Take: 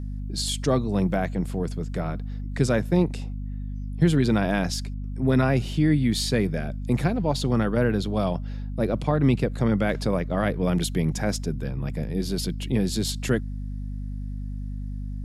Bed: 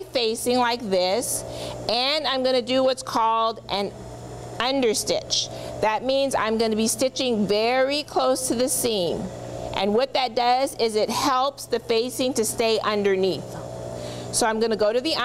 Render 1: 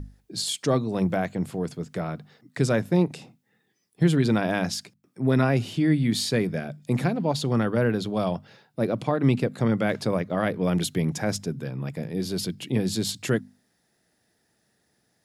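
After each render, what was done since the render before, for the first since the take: hum notches 50/100/150/200/250 Hz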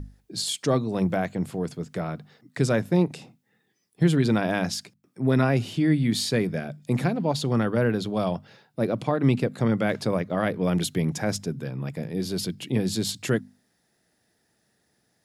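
no audible change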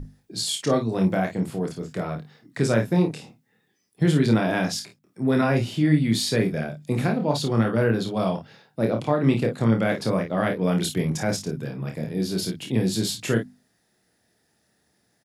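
early reflections 27 ms -4.5 dB, 52 ms -8.5 dB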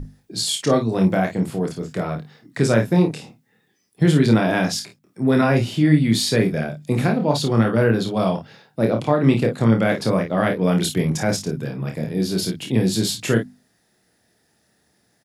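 trim +4 dB

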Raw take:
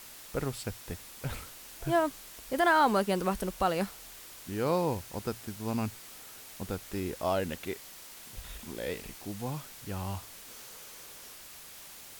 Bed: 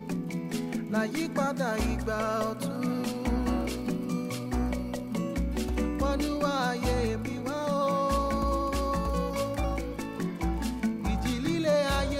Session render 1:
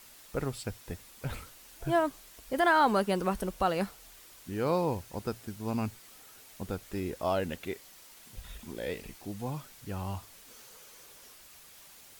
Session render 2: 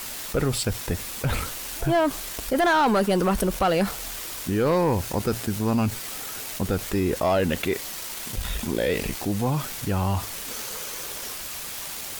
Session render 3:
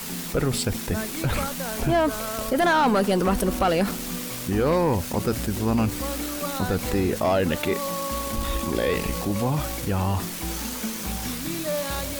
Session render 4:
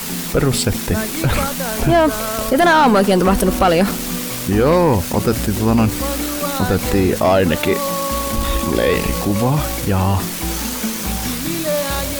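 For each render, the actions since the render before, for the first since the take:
noise reduction 6 dB, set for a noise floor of -49 dBFS
waveshaping leveller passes 2; level flattener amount 50%
add bed -3 dB
trim +8 dB

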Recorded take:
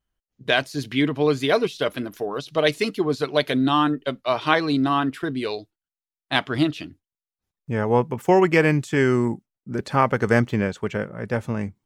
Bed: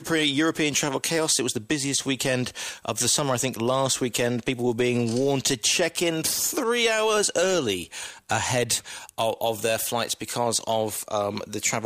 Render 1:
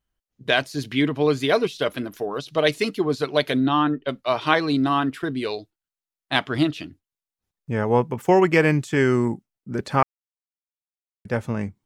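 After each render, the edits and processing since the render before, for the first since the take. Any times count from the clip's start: 3.60–4.09 s: distance through air 170 m; 10.03–11.25 s: mute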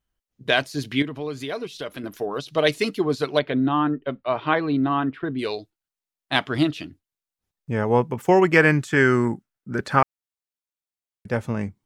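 1.02–2.04 s: compression 2:1, threshold -34 dBFS; 3.39–5.39 s: distance through air 390 m; 8.54–9.99 s: peaking EQ 1.5 kHz +8.5 dB 0.71 oct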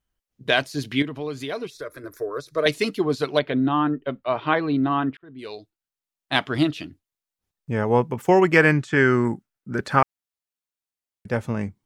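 1.70–2.66 s: static phaser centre 800 Hz, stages 6; 5.17–6.45 s: fade in equal-power; 8.73–9.25 s: distance through air 67 m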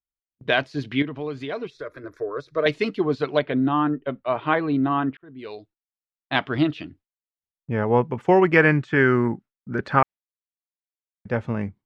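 gate with hold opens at -42 dBFS; low-pass 3.1 kHz 12 dB/octave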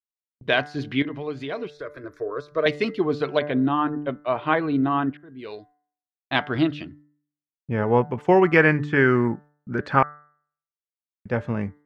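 gate with hold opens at -48 dBFS; de-hum 147.4 Hz, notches 14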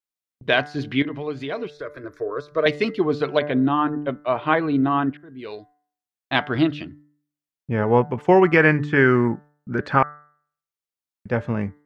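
trim +2 dB; peak limiter -3 dBFS, peak gain reduction 2.5 dB

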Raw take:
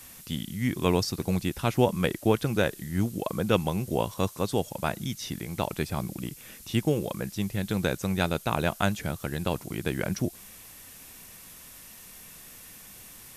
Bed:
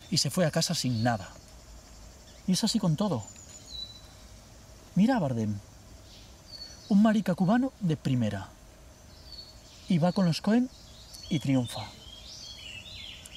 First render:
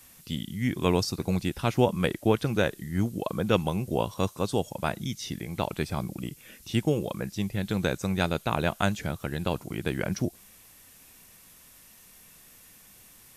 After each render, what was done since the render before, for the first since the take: noise print and reduce 6 dB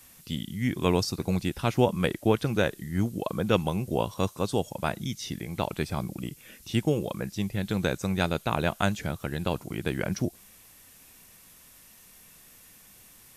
no audible change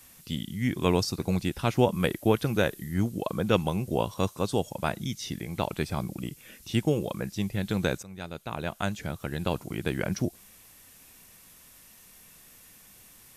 1.93–2.94 s: peaking EQ 12 kHz +6.5 dB 0.4 oct; 8.03–9.49 s: fade in linear, from -19 dB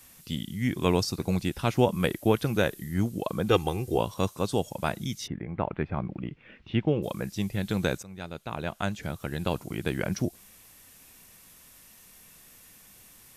3.48–3.98 s: comb 2.5 ms; 5.26–7.02 s: low-pass 1.8 kHz -> 3.3 kHz 24 dB/octave; 8.03–9.03 s: treble shelf 7.9 kHz -6.5 dB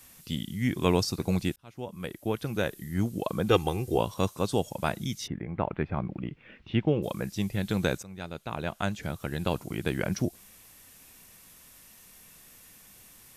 1.56–3.22 s: fade in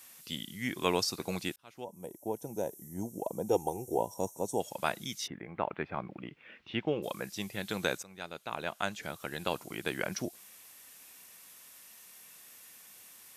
high-pass 610 Hz 6 dB/octave; 1.84–4.60 s: time-frequency box 1–5.4 kHz -21 dB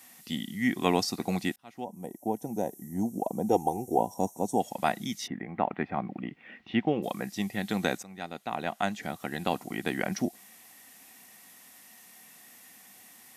small resonant body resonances 230/740/1900 Hz, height 11 dB, ringing for 25 ms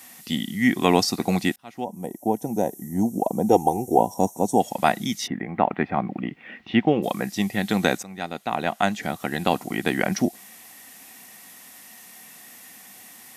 trim +7.5 dB; peak limiter -2 dBFS, peak gain reduction 2 dB

